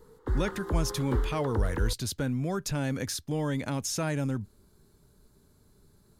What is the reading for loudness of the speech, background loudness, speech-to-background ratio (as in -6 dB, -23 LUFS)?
-31.5 LUFS, -33.5 LUFS, 2.0 dB